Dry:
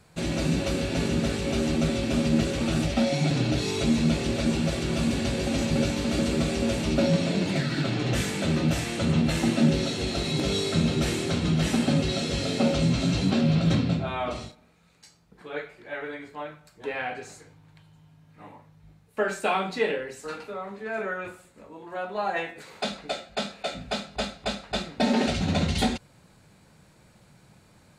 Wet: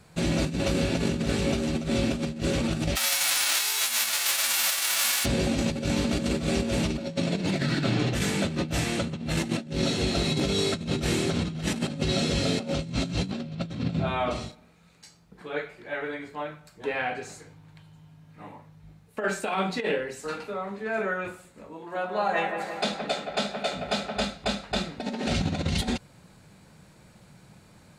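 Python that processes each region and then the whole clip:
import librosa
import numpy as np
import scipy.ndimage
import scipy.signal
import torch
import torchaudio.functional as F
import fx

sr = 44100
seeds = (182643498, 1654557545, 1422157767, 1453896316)

y = fx.envelope_flatten(x, sr, power=0.3, at=(2.95, 5.24), fade=0.02)
y = fx.highpass(y, sr, hz=1100.0, slope=12, at=(2.95, 5.24), fade=0.02)
y = fx.chain(y, sr, fx.low_shelf(hz=110.0, db=-8.0),
    fx.echo_wet_lowpass(ms=171, feedback_pct=64, hz=2000.0, wet_db=-6.0), at=(21.77, 24.2))
y = fx.peak_eq(y, sr, hz=180.0, db=2.5, octaves=0.52)
y = fx.over_compress(y, sr, threshold_db=-26.0, ratio=-0.5)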